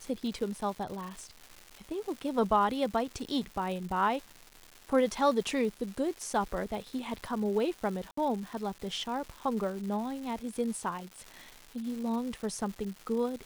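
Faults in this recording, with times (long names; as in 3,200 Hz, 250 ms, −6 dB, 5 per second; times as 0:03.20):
surface crackle 400 per second −39 dBFS
0:08.11–0:08.17: drop-out 64 ms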